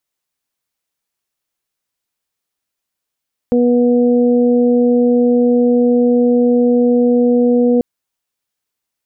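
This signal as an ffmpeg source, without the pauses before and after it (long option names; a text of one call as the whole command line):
ffmpeg -f lavfi -i "aevalsrc='0.282*sin(2*PI*243*t)+0.237*sin(2*PI*486*t)+0.0316*sin(2*PI*729*t)':duration=4.29:sample_rate=44100" out.wav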